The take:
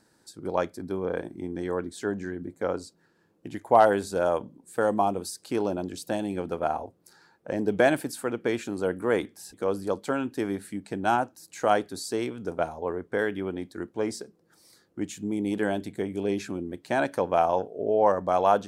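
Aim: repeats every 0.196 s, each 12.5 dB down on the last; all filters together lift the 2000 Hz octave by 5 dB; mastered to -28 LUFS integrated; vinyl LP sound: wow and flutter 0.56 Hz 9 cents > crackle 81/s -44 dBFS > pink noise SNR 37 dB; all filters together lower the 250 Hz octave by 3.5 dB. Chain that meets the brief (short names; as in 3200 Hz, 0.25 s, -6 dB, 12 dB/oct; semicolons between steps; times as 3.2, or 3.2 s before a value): bell 250 Hz -5 dB; bell 2000 Hz +7 dB; feedback echo 0.196 s, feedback 24%, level -12.5 dB; wow and flutter 0.56 Hz 9 cents; crackle 81/s -44 dBFS; pink noise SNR 37 dB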